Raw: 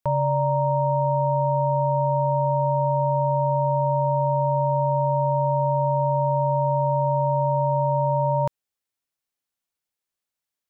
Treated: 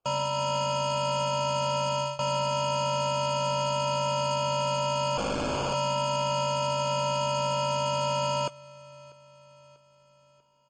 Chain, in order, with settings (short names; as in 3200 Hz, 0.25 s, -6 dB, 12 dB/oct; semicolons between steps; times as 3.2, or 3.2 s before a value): 5.17–5.74 infinite clipping; HPF 91 Hz 12 dB/oct; reverb removal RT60 2 s; low shelf 170 Hz -11.5 dB; AGC gain up to 12 dB; 1.73–2.19 fade out equal-power; limiter -16.5 dBFS, peak gain reduction 11 dB; sample-and-hold 23×; soft clip -21.5 dBFS, distortion -15 dB; feedback echo 0.642 s, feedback 53%, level -23 dB; gain -1 dB; MP3 32 kbps 24000 Hz